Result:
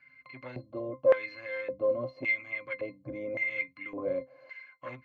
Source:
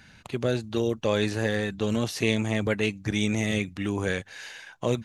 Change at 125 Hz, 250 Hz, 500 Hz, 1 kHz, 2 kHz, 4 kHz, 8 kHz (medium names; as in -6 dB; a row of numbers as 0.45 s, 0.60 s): -19.5 dB, -16.0 dB, -2.0 dB, -7.0 dB, -2.0 dB, -21.5 dB, under -35 dB